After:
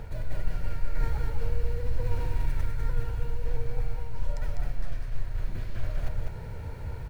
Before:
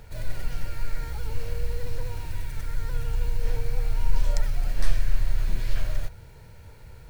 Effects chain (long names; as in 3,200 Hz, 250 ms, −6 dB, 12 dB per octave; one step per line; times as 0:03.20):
high-shelf EQ 2,500 Hz −12 dB
reversed playback
downward compressor 6 to 1, threshold −30 dBFS, peak gain reduction 19 dB
reversed playback
single-tap delay 200 ms −4.5 dB
level +8.5 dB